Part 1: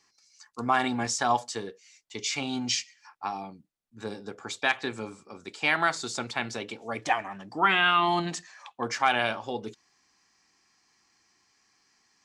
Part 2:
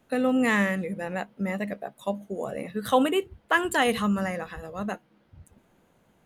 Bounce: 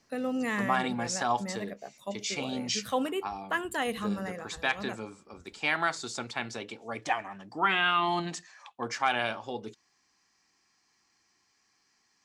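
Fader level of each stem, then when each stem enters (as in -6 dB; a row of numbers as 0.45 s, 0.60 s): -3.5 dB, -8.0 dB; 0.00 s, 0.00 s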